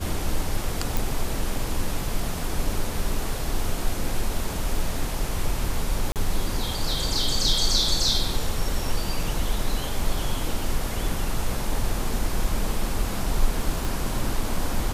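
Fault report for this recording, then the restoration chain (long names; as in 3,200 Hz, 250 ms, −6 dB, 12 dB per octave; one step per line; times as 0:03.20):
0:00.97: click
0:06.12–0:06.16: drop-out 38 ms
0:13.85: click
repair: click removal
repair the gap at 0:06.12, 38 ms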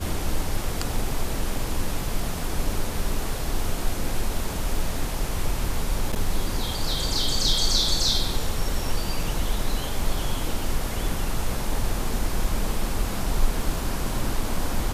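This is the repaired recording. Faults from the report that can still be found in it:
0:13.85: click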